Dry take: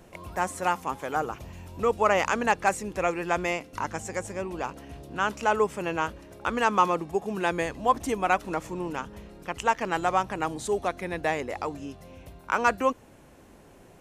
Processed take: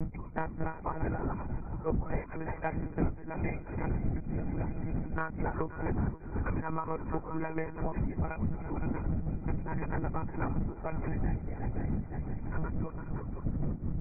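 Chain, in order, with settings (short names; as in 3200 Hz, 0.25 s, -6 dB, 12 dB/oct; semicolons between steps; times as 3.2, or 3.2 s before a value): ending faded out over 4.22 s; wind noise 170 Hz -24 dBFS; tremolo 4.6 Hz, depth 78%; gate -36 dBFS, range -7 dB; brick-wall FIR low-pass 2500 Hz; low shelf 360 Hz +2 dB; multi-head echo 0.172 s, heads second and third, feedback 51%, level -15 dB; monotone LPC vocoder at 8 kHz 160 Hz; low shelf 180 Hz +5.5 dB; compressor 12:1, threshold -28 dBFS, peak gain reduction 22.5 dB; 1.47–3.67 three-band expander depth 100%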